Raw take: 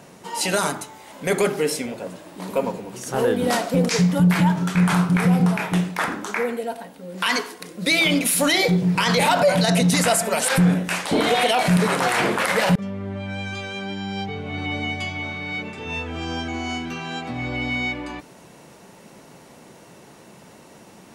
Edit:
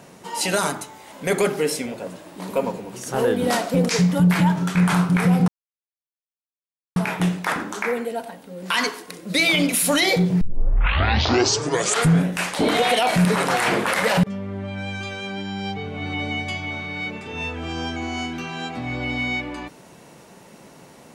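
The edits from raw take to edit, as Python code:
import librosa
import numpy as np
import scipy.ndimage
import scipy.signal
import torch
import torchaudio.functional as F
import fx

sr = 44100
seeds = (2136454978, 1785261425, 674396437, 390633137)

y = fx.edit(x, sr, fx.insert_silence(at_s=5.48, length_s=1.48),
    fx.tape_start(start_s=8.93, length_s=1.83), tone=tone)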